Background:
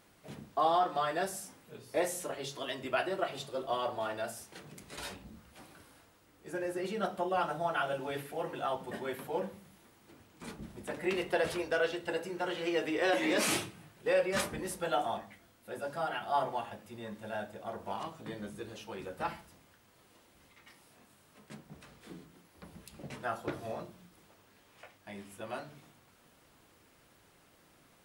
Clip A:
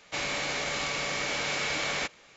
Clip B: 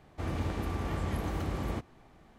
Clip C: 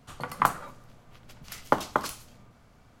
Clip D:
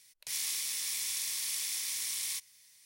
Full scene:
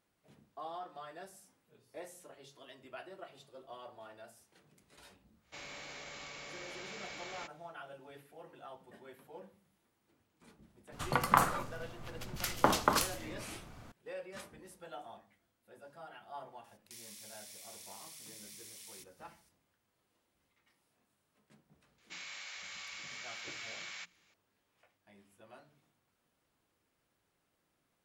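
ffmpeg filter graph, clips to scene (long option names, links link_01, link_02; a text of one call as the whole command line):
ffmpeg -i bed.wav -i cue0.wav -i cue1.wav -i cue2.wav -i cue3.wav -filter_complex "[1:a]asplit=2[link_01][link_02];[0:a]volume=-16dB[link_03];[3:a]alimiter=level_in=13.5dB:limit=-1dB:release=50:level=0:latency=1[link_04];[4:a]acompressor=threshold=-44dB:ratio=4:attack=28:release=68:knee=1:detection=peak[link_05];[link_02]highpass=1400[link_06];[link_01]atrim=end=2.36,asetpts=PTS-STARTPTS,volume=-16.5dB,afade=type=in:duration=0.1,afade=type=out:start_time=2.26:duration=0.1,adelay=5400[link_07];[link_04]atrim=end=3,asetpts=PTS-STARTPTS,volume=-8.5dB,afade=type=in:duration=0.004:curve=hsin,afade=type=out:start_time=2.996:duration=0.004:curve=hsin,adelay=10920[link_08];[link_05]atrim=end=2.85,asetpts=PTS-STARTPTS,volume=-10.5dB,afade=type=in:duration=0.004:curve=hsin,afade=type=out:start_time=2.846:duration=0.004:curve=hsin,adelay=16640[link_09];[link_06]atrim=end=2.36,asetpts=PTS-STARTPTS,volume=-13.5dB,afade=type=in:duration=0.004:curve=hsin,afade=type=out:start_time=2.356:duration=0.004:curve=hsin,adelay=21980[link_10];[link_03][link_07][link_08][link_09][link_10]amix=inputs=5:normalize=0" out.wav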